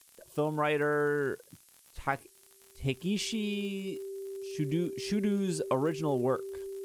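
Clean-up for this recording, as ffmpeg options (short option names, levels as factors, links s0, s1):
-af "adeclick=t=4,bandreject=f=390:w=30,afftdn=nr=18:nf=-60"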